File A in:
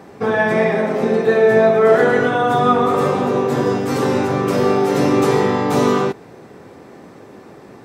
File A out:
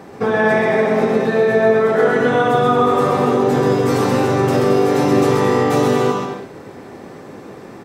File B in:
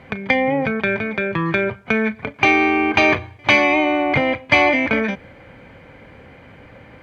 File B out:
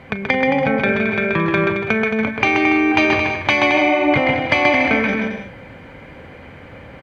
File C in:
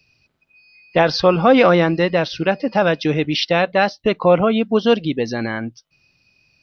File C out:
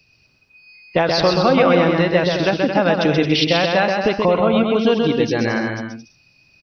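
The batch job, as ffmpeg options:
-filter_complex "[0:a]acompressor=threshold=-17dB:ratio=3,asplit=2[a][b];[b]aecho=0:1:130|221|284.7|329.3|360.5:0.631|0.398|0.251|0.158|0.1[c];[a][c]amix=inputs=2:normalize=0,volume=2.5dB"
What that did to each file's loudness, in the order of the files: +0.5, +1.0, 0.0 LU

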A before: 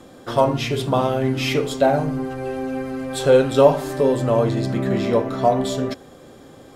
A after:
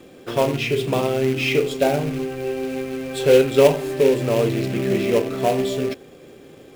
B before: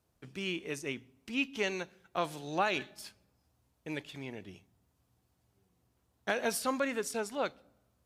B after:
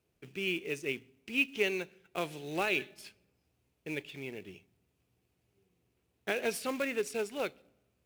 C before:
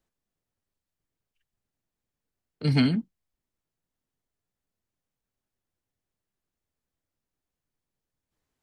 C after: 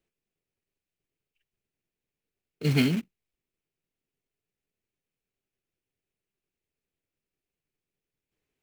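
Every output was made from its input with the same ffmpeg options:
-af "acrusher=bits=3:mode=log:mix=0:aa=0.000001,equalizer=f=160:t=o:w=0.67:g=4,equalizer=f=400:t=o:w=0.67:g=9,equalizer=f=1k:t=o:w=0.67:g=-3,equalizer=f=2.5k:t=o:w=0.67:g=10,volume=-5dB"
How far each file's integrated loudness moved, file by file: -0.5, +0.5, -1.0 LU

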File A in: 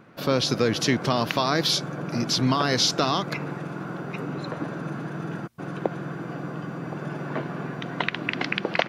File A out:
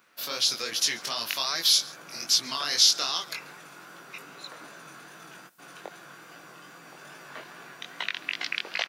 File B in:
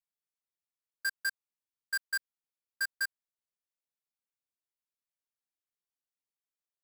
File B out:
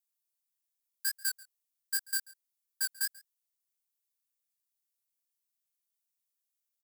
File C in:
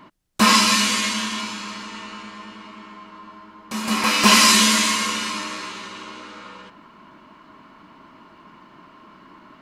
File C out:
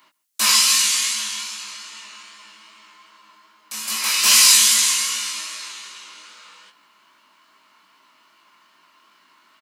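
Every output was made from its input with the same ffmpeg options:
-filter_complex "[0:a]aderivative,acontrast=45,flanger=delay=17.5:depth=5.4:speed=2.5,asplit=2[a][b];[b]aecho=0:1:138:0.075[c];[a][c]amix=inputs=2:normalize=0,volume=4dB"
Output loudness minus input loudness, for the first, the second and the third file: +1.5, +2.0, +2.0 LU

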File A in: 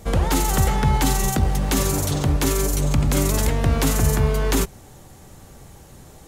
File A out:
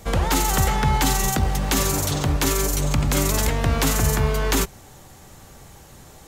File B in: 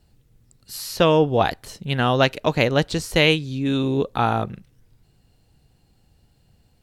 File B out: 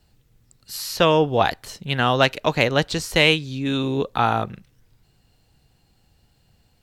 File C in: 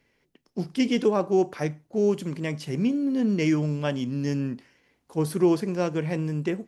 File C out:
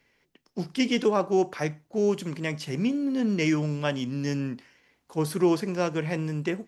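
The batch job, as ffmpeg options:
-filter_complex "[0:a]equalizer=f=10k:w=2.2:g=-3.5,acrossover=split=720[a][b];[b]acontrast=20[c];[a][c]amix=inputs=2:normalize=0,volume=-2dB"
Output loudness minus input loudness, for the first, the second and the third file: -0.5, 0.0, -1.5 LU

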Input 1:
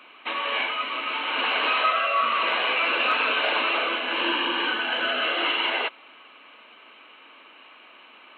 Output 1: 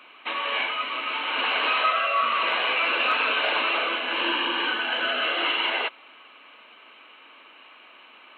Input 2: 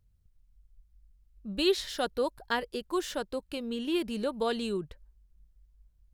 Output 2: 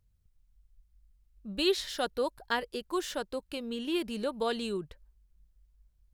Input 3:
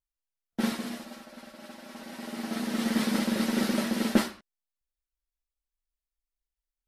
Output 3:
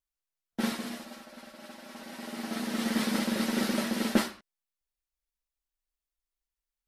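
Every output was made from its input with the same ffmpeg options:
-af "lowshelf=f=430:g=-3"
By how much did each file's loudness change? 0.0, -1.0, -1.5 LU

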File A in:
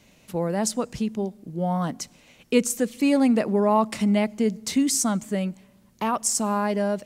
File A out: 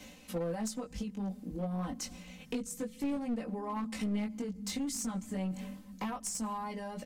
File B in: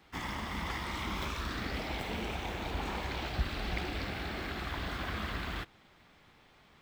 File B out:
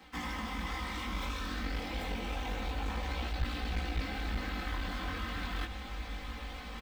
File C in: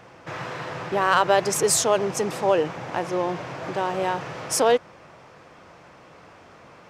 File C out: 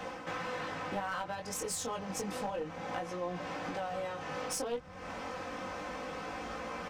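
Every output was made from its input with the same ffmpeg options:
-filter_complex "[0:a]aecho=1:1:3.9:0.87,areverse,acompressor=mode=upward:threshold=-27dB:ratio=2.5,areverse,acrossover=split=110[a][b];[a]aecho=1:1:560|924|1161|1314|1414:0.631|0.398|0.251|0.158|0.1[c];[b]acompressor=threshold=-32dB:ratio=6[d];[c][d]amix=inputs=2:normalize=0,flanger=delay=17:depth=4.6:speed=0.29,aeval=exprs='clip(val(0),-1,0.0224)':c=same"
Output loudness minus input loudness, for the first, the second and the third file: -13.5, -0.5, -15.0 LU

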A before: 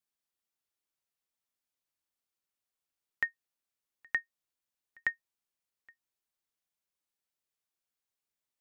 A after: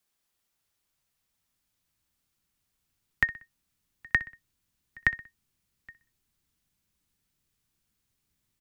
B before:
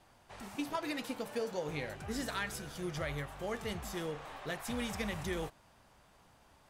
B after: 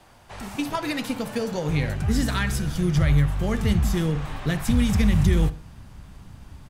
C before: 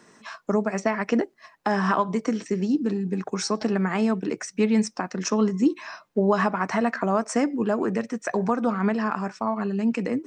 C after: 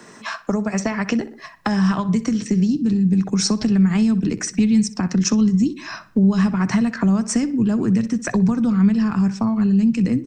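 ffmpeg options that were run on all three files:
-filter_complex "[0:a]asubboost=boost=7.5:cutoff=210,asplit=2[a][b];[b]acompressor=threshold=-24dB:ratio=6,volume=0dB[c];[a][c]amix=inputs=2:normalize=0,asplit=2[d][e];[e]adelay=62,lowpass=f=4.7k:p=1,volume=-16.5dB,asplit=2[f][g];[g]adelay=62,lowpass=f=4.7k:p=1,volume=0.39,asplit=2[h][i];[i]adelay=62,lowpass=f=4.7k:p=1,volume=0.39[j];[d][f][h][j]amix=inputs=4:normalize=0,acrossover=split=150|3000[k][l][m];[l]acompressor=threshold=-25dB:ratio=10[n];[k][n][m]amix=inputs=3:normalize=0,volume=4.5dB"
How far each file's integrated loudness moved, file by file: +7.0, +15.5, +6.0 LU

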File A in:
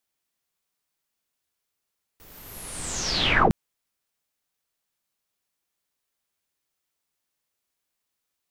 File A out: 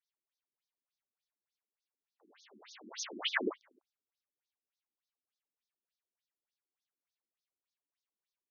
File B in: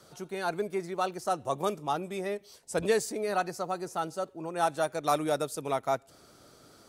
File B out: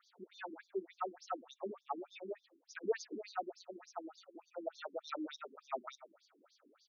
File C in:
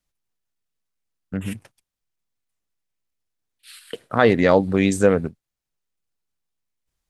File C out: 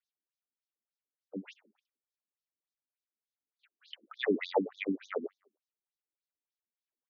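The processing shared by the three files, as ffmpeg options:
-filter_complex "[0:a]asplit=4[a][b][c][d];[b]adelay=101,afreqshift=-38,volume=-18dB[e];[c]adelay=202,afreqshift=-76,volume=-27.4dB[f];[d]adelay=303,afreqshift=-114,volume=-36.7dB[g];[a][e][f][g]amix=inputs=4:normalize=0,afftfilt=real='re*between(b*sr/1024,260*pow(4900/260,0.5+0.5*sin(2*PI*3.4*pts/sr))/1.41,260*pow(4900/260,0.5+0.5*sin(2*PI*3.4*pts/sr))*1.41)':imag='im*between(b*sr/1024,260*pow(4900/260,0.5+0.5*sin(2*PI*3.4*pts/sr))/1.41,260*pow(4900/260,0.5+0.5*sin(2*PI*3.4*pts/sr))*1.41)':win_size=1024:overlap=0.75,volume=-6dB"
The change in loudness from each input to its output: -13.0, -13.0, -16.0 LU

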